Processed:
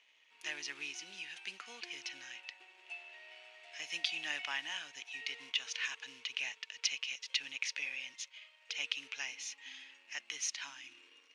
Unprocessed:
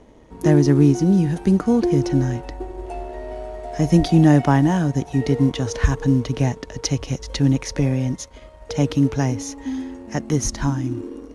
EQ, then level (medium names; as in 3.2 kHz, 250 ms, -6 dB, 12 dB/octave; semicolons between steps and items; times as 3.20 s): band-pass filter 2.6 kHz, Q 4.1; distance through air 67 m; differentiator; +14.0 dB